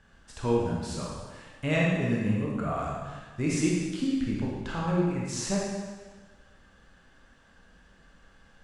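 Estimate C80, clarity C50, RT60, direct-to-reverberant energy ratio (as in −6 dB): 1.5 dB, −1.0 dB, 1.4 s, −4.0 dB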